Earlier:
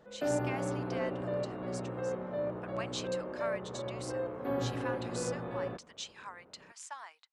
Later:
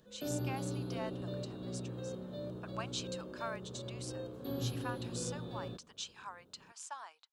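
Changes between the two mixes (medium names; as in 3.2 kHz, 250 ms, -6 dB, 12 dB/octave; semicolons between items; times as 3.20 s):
background: add FFT filter 120 Hz 0 dB, 390 Hz -5 dB, 850 Hz -15 dB, 1.4 kHz -11 dB, 2.6 kHz -6 dB, 3.7 kHz +12 dB; master: add peaking EQ 2 kHz -9.5 dB 0.41 oct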